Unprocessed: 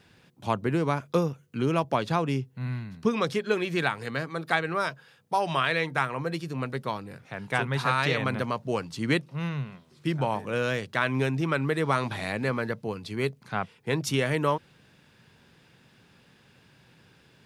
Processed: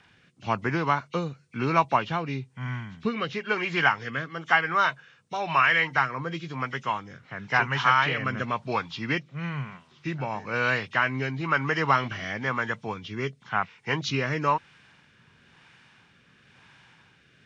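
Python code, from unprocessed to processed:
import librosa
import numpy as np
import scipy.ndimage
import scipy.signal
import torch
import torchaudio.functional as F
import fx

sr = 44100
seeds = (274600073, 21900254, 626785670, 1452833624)

y = fx.freq_compress(x, sr, knee_hz=1900.0, ratio=1.5)
y = fx.low_shelf_res(y, sr, hz=700.0, db=-7.5, q=1.5)
y = fx.rotary(y, sr, hz=1.0)
y = y * 10.0 ** (7.0 / 20.0)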